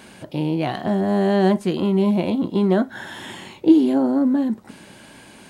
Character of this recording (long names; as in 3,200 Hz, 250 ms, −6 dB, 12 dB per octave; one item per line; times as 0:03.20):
background noise floor −46 dBFS
spectral slope −6.5 dB per octave